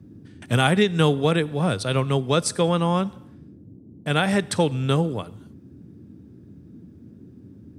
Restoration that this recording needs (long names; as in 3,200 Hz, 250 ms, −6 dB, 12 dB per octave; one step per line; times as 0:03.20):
noise reduction from a noise print 21 dB